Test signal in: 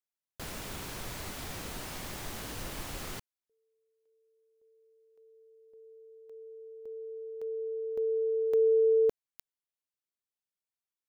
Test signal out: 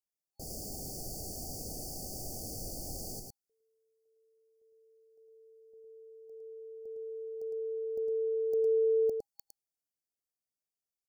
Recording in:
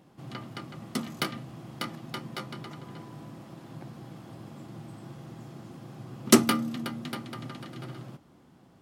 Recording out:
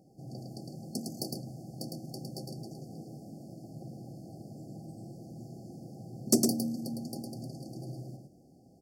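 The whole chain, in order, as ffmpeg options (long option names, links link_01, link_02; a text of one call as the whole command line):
ffmpeg -i in.wav -filter_complex "[0:a]afftfilt=real='re*(1-between(b*sr/4096,810,4400))':imag='im*(1-between(b*sr/4096,810,4400))':win_size=4096:overlap=0.75,asplit=2[link_01][link_02];[link_02]acompressor=threshold=-39dB:ratio=12:attack=48:release=42:knee=6:detection=rms,volume=-1.5dB[link_03];[link_01][link_03]amix=inputs=2:normalize=0,asoftclip=type=hard:threshold=-6.5dB,aecho=1:1:108:0.596,adynamicequalizer=threshold=0.00282:dfrequency=3800:dqfactor=0.7:tfrequency=3800:tqfactor=0.7:attack=5:release=100:ratio=0.4:range=2:mode=boostabove:tftype=highshelf,volume=-7.5dB" out.wav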